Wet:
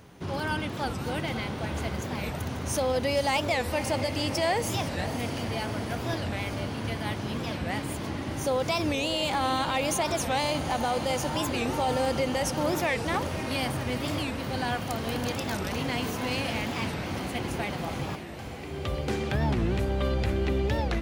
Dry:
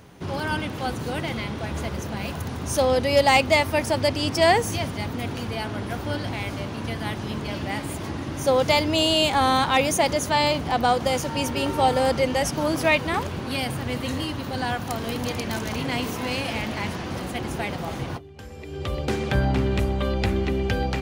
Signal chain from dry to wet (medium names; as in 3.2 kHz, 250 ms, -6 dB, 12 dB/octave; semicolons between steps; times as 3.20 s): peak limiter -15.5 dBFS, peak gain reduction 6 dB; echo that smears into a reverb 538 ms, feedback 69%, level -11 dB; warped record 45 rpm, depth 250 cents; trim -3 dB